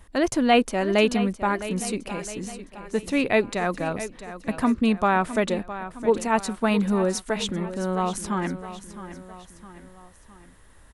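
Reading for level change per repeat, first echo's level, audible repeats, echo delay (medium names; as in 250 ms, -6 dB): -6.0 dB, -13.0 dB, 3, 662 ms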